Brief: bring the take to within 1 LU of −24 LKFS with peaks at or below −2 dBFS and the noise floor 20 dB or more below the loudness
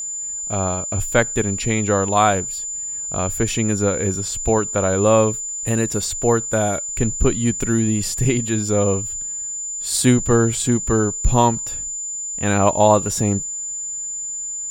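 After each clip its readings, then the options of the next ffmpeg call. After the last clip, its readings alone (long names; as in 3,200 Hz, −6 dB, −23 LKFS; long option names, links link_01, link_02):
interfering tone 7,100 Hz; level of the tone −25 dBFS; integrated loudness −19.5 LKFS; sample peak −1.0 dBFS; target loudness −24.0 LKFS
→ -af "bandreject=frequency=7100:width=30"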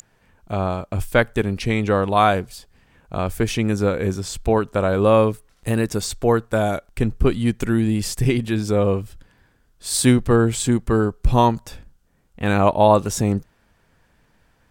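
interfering tone none found; integrated loudness −20.0 LKFS; sample peak −1.5 dBFS; target loudness −24.0 LKFS
→ -af "volume=-4dB"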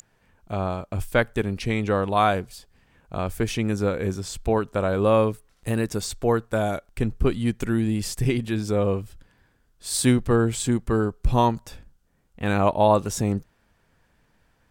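integrated loudness −24.0 LKFS; sample peak −5.5 dBFS; background noise floor −66 dBFS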